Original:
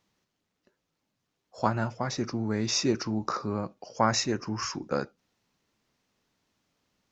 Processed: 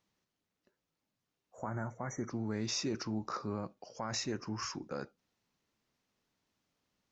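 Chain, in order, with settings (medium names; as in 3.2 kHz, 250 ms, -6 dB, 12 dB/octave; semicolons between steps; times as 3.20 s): spectral replace 1.39–2.28 s, 2.3–5.7 kHz before; peak limiter -19.5 dBFS, peak gain reduction 10.5 dB; trim -6.5 dB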